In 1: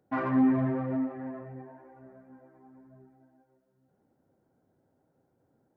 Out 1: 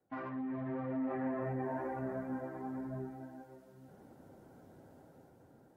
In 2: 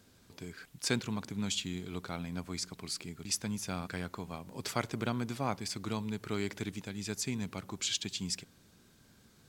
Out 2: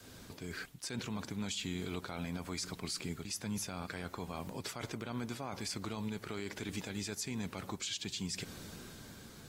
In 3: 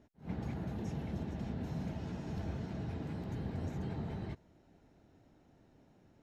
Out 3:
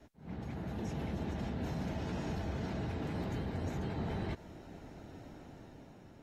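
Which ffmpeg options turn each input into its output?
-af "adynamicequalizer=threshold=0.00447:dfrequency=140:dqfactor=0.79:tfrequency=140:tqfactor=0.79:attack=5:release=100:ratio=0.375:range=2.5:mode=cutabove:tftype=bell,areverse,acompressor=threshold=-46dB:ratio=12,areverse,alimiter=level_in=19dB:limit=-24dB:level=0:latency=1:release=60,volume=-19dB,dynaudnorm=f=140:g=11:m=5dB,volume=9dB" -ar 48000 -c:a aac -b:a 48k

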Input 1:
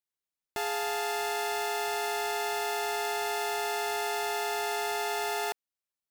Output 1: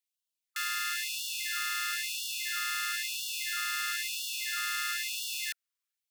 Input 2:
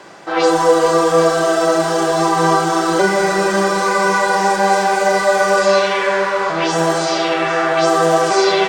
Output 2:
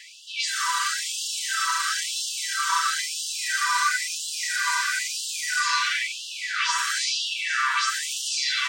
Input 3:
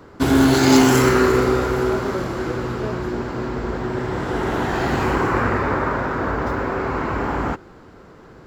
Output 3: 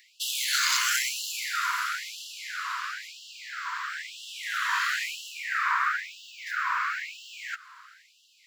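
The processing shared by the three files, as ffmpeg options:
-filter_complex "[0:a]acrossover=split=1400|5800[a][b][c];[a]acompressor=threshold=-22dB:ratio=4[d];[b]acompressor=threshold=-28dB:ratio=4[e];[c]acompressor=threshold=-34dB:ratio=4[f];[d][e][f]amix=inputs=3:normalize=0,afftfilt=real='re*gte(b*sr/1024,920*pow(2700/920,0.5+0.5*sin(2*PI*1*pts/sr)))':imag='im*gte(b*sr/1024,920*pow(2700/920,0.5+0.5*sin(2*PI*1*pts/sr)))':win_size=1024:overlap=0.75,volume=3dB"

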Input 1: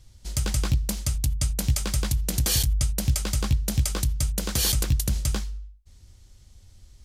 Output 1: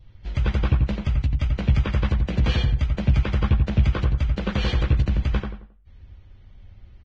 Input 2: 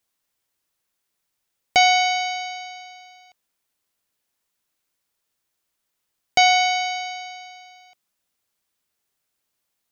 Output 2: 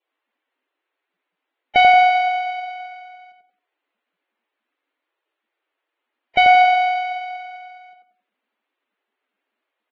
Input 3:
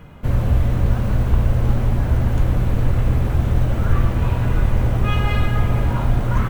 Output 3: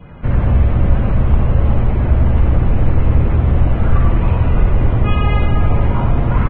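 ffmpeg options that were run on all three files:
-filter_complex "[0:a]asplit=2[a][b];[b]adelay=89,lowpass=f=1.8k:p=1,volume=-3dB,asplit=2[c][d];[d]adelay=89,lowpass=f=1.8k:p=1,volume=0.34,asplit=2[e][f];[f]adelay=89,lowpass=f=1.8k:p=1,volume=0.34,asplit=2[g][h];[h]adelay=89,lowpass=f=1.8k:p=1,volume=0.34[i];[a][c][e][g][i]amix=inputs=5:normalize=0,asoftclip=type=tanh:threshold=-4dB,lowpass=f=2.9k:w=0.5412,lowpass=f=2.9k:w=1.3066,adynamicequalizer=threshold=0.00708:dfrequency=1600:dqfactor=2.9:tfrequency=1600:tqfactor=2.9:attack=5:release=100:ratio=0.375:range=2.5:mode=cutabove:tftype=bell,volume=3.5dB" -ar 22050 -c:a libvorbis -b:a 16k

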